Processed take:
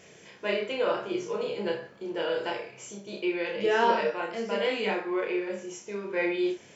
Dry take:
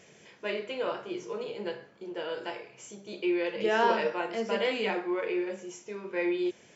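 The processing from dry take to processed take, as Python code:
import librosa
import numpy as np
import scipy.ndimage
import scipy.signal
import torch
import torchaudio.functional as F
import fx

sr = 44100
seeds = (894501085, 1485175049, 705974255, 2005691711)

y = fx.room_early_taps(x, sr, ms=(30, 63), db=(-4.0, -11.5))
y = fx.rider(y, sr, range_db=4, speed_s=2.0)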